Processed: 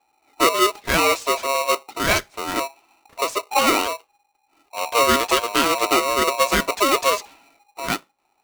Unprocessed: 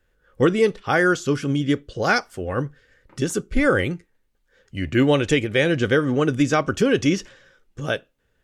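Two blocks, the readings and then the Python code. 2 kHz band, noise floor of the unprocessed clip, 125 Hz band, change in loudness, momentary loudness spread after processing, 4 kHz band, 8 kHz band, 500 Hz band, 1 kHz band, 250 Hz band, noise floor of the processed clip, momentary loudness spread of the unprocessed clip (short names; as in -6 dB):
+0.5 dB, -68 dBFS, -13.0 dB, +1.5 dB, 10 LU, +7.5 dB, +9.5 dB, -1.5 dB, +8.0 dB, -7.0 dB, -68 dBFS, 10 LU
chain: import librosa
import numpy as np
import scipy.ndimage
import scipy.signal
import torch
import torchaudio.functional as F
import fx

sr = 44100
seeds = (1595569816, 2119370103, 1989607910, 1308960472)

y = fx.env_lowpass(x, sr, base_hz=1400.0, full_db=-16.0)
y = y * np.sign(np.sin(2.0 * np.pi * 820.0 * np.arange(len(y)) / sr))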